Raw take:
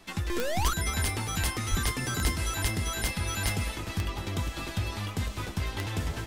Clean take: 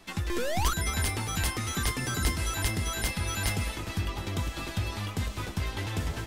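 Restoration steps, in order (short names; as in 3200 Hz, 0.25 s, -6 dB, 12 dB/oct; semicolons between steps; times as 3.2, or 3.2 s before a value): de-click; 1.7–1.82 HPF 140 Hz 24 dB/oct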